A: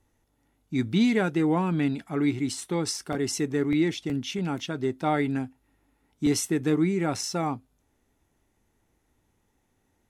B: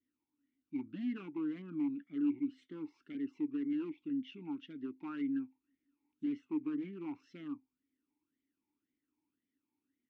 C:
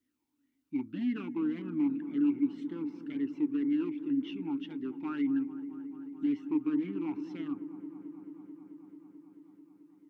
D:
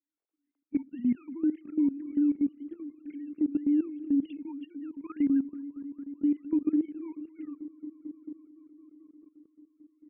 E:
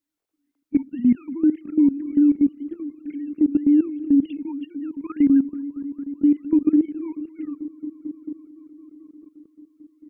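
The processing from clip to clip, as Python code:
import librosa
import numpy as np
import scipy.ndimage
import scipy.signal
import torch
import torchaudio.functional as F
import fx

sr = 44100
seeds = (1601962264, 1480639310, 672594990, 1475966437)

y1 = fx.env_lowpass_down(x, sr, base_hz=1900.0, full_db=-24.0)
y1 = 10.0 ** (-20.0 / 20.0) * (np.abs((y1 / 10.0 ** (-20.0 / 20.0) + 3.0) % 4.0 - 2.0) - 1.0)
y1 = fx.vowel_sweep(y1, sr, vowels='i-u', hz=1.9)
y1 = y1 * librosa.db_to_amplitude(-5.0)
y2 = fx.echo_wet_lowpass(y1, sr, ms=219, feedback_pct=83, hz=1100.0, wet_db=-12.5)
y2 = y2 * librosa.db_to_amplitude(5.5)
y3 = fx.sine_speech(y2, sr)
y3 = fx.level_steps(y3, sr, step_db=15)
y3 = y3 * librosa.db_to_amplitude(7.0)
y4 = fx.low_shelf(y3, sr, hz=190.0, db=5.5)
y4 = y4 * librosa.db_to_amplitude(7.5)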